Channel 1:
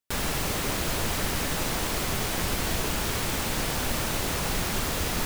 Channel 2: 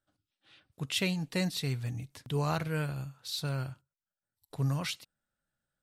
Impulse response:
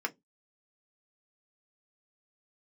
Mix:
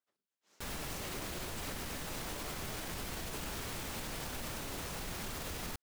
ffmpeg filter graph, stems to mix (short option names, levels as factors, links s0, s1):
-filter_complex "[0:a]adelay=500,volume=0.631[s0];[1:a]aeval=exprs='abs(val(0))':c=same,highpass=200,volume=0.562[s1];[s0][s1]amix=inputs=2:normalize=0,alimiter=level_in=2.37:limit=0.0631:level=0:latency=1:release=135,volume=0.422"